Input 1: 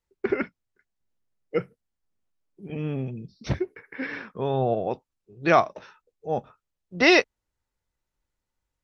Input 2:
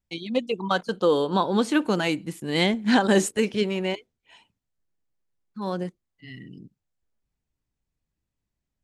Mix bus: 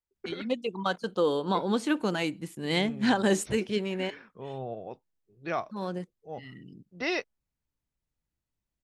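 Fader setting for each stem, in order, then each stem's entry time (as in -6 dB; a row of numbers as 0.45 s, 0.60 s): -13.0 dB, -5.0 dB; 0.00 s, 0.15 s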